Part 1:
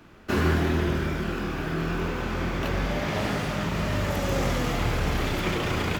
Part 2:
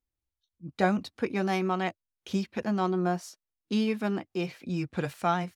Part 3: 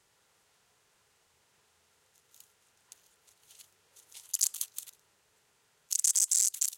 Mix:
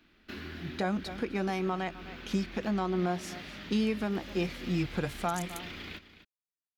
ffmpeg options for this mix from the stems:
-filter_complex "[0:a]acompressor=threshold=0.0355:ratio=2,equalizer=f=125:t=o:w=1:g=-11,equalizer=f=250:t=o:w=1:g=4,equalizer=f=500:t=o:w=1:g=-6,equalizer=f=1000:t=o:w=1:g=-7,equalizer=f=2000:t=o:w=1:g=4,equalizer=f=4000:t=o:w=1:g=9,equalizer=f=8000:t=o:w=1:g=-9,volume=0.251,asplit=2[s0][s1];[s1]volume=0.211[s2];[1:a]volume=1.12,asplit=3[s3][s4][s5];[s4]volume=0.106[s6];[2:a]adelay=950,volume=0.299[s7];[s5]apad=whole_len=340646[s8];[s7][s8]sidechaingate=range=0.0224:threshold=0.00562:ratio=16:detection=peak[s9];[s2][s6]amix=inputs=2:normalize=0,aecho=0:1:256:1[s10];[s0][s3][s9][s10]amix=inputs=4:normalize=0,alimiter=limit=0.1:level=0:latency=1:release=222"

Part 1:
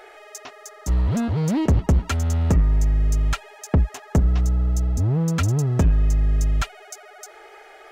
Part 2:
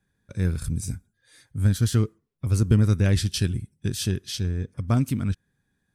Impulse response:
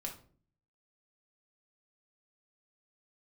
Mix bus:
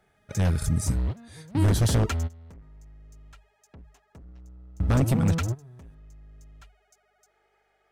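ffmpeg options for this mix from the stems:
-filter_complex "[0:a]bandreject=f=50:t=h:w=6,bandreject=f=100:t=h:w=6,bandreject=f=150:t=h:w=6,aeval=exprs='0.316*sin(PI/2*2*val(0)/0.316)':c=same,aeval=exprs='val(0)+0.00447*(sin(2*PI*50*n/s)+sin(2*PI*2*50*n/s)/2+sin(2*PI*3*50*n/s)/3+sin(2*PI*4*50*n/s)/4+sin(2*PI*5*50*n/s)/5)':c=same,volume=0.224[s0];[1:a]deesser=0.55,alimiter=limit=0.237:level=0:latency=1:release=36,volume=1.41,asplit=3[s1][s2][s3];[s1]atrim=end=2.32,asetpts=PTS-STARTPTS,afade=t=out:st=2.316:d=0.004:c=hsin[s4];[s2]atrim=start=2.32:end=4.8,asetpts=PTS-STARTPTS,volume=0[s5];[s3]atrim=start=4.8,asetpts=PTS-STARTPTS,afade=t=in:d=0.004:c=hsin[s6];[s4][s5][s6]concat=n=3:v=0:a=1,asplit=2[s7][s8];[s8]apad=whole_len=348991[s9];[s0][s9]sidechaingate=range=0.0891:threshold=0.00447:ratio=16:detection=peak[s10];[s10][s7]amix=inputs=2:normalize=0,aeval=exprs='0.188*(abs(mod(val(0)/0.188+3,4)-2)-1)':c=same"

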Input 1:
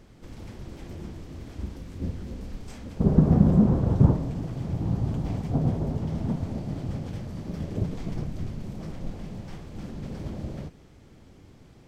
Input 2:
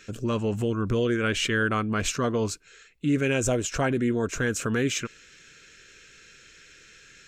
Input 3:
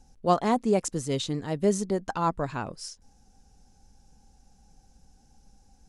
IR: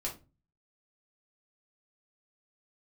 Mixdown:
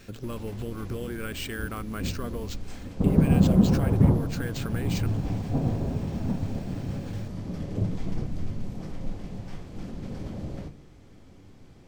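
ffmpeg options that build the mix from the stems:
-filter_complex "[0:a]volume=0.631,asplit=2[s0][s1];[s1]volume=0.562[s2];[1:a]acompressor=threshold=0.0398:ratio=6,acrusher=samples=4:mix=1:aa=0.000001,volume=0.631[s3];[3:a]atrim=start_sample=2205[s4];[s2][s4]afir=irnorm=-1:irlink=0[s5];[s0][s3][s5]amix=inputs=3:normalize=0"

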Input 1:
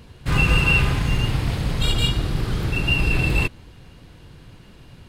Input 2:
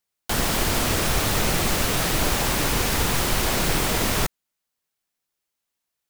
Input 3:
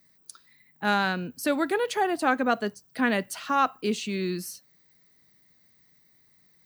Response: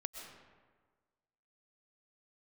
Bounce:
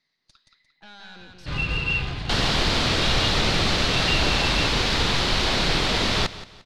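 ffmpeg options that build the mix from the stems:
-filter_complex "[0:a]acrusher=bits=4:mode=log:mix=0:aa=0.000001,adelay=1200,volume=0.316[s0];[1:a]adelay=2000,volume=0.944,asplit=2[s1][s2];[s2]volume=0.158[s3];[2:a]lowshelf=f=360:g=-11.5,alimiter=limit=0.0841:level=0:latency=1,aeval=exprs='(tanh(112*val(0)+0.75)-tanh(0.75))/112':c=same,volume=0.668,asplit=2[s4][s5];[s5]volume=0.668[s6];[s3][s6]amix=inputs=2:normalize=0,aecho=0:1:175|350|525|700|875:1|0.33|0.109|0.0359|0.0119[s7];[s0][s1][s4][s7]amix=inputs=4:normalize=0,lowpass=f=4100:t=q:w=2.4"

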